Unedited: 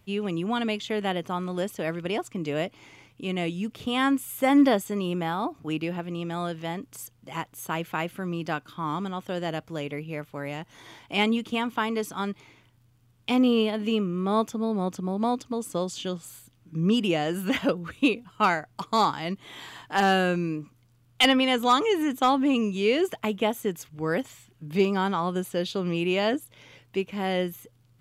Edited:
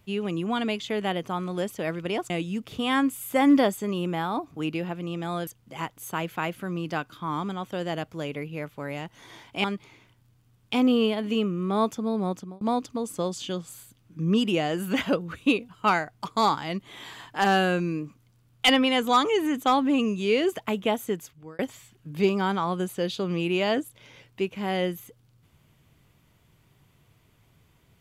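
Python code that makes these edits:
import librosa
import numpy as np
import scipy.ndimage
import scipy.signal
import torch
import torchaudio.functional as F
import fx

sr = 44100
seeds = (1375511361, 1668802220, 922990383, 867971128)

y = fx.edit(x, sr, fx.cut(start_s=2.3, length_s=1.08),
    fx.cut(start_s=6.55, length_s=0.48),
    fx.cut(start_s=11.2, length_s=1.0),
    fx.fade_out_span(start_s=14.84, length_s=0.33),
    fx.fade_out_span(start_s=23.66, length_s=0.49), tone=tone)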